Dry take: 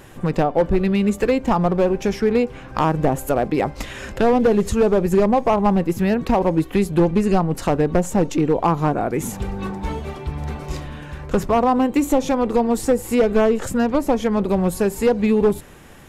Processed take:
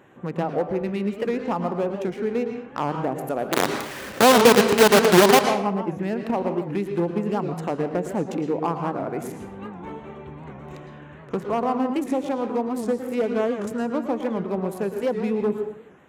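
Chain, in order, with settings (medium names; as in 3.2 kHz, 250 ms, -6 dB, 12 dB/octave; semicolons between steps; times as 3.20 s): local Wiener filter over 9 samples; 3.53–5.41 s: companded quantiser 2-bit; high-pass 170 Hz 12 dB/octave; on a send at -6 dB: reverberation RT60 0.65 s, pre-delay 104 ms; on the sum: warped record 78 rpm, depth 160 cents; trim -7 dB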